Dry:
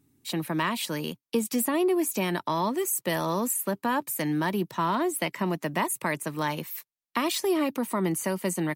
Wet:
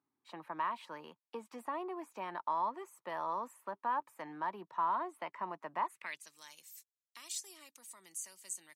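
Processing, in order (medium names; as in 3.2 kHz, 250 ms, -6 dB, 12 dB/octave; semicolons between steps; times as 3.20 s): band-pass sweep 1 kHz -> 7.2 kHz, 5.83–6.33 s; trim -4 dB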